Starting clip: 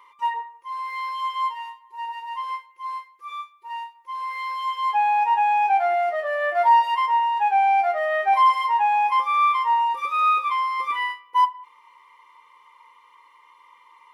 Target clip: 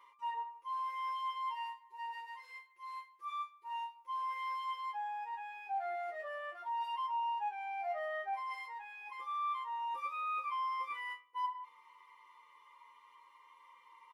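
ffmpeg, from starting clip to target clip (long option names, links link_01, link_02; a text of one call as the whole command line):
ffmpeg -i in.wav -filter_complex "[0:a]areverse,acompressor=threshold=-30dB:ratio=5,areverse,asplit=2[link_01][link_02];[link_02]adelay=8.8,afreqshift=-0.31[link_03];[link_01][link_03]amix=inputs=2:normalize=1,volume=-5dB" out.wav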